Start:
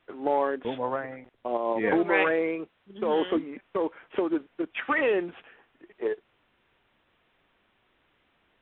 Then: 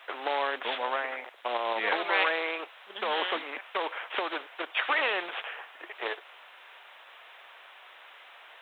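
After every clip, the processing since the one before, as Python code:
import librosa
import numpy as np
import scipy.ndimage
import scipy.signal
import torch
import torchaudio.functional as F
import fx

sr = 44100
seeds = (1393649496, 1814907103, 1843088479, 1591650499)

y = scipy.signal.sosfilt(scipy.signal.butter(4, 620.0, 'highpass', fs=sr, output='sos'), x)
y = fx.spectral_comp(y, sr, ratio=2.0)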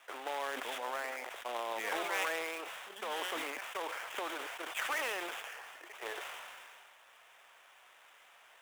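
y = fx.dead_time(x, sr, dead_ms=0.062)
y = fx.sustainer(y, sr, db_per_s=24.0)
y = y * 10.0 ** (-9.0 / 20.0)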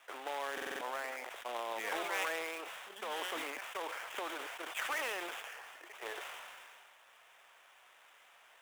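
y = fx.buffer_glitch(x, sr, at_s=(0.53,), block=2048, repeats=5)
y = y * 10.0 ** (-1.5 / 20.0)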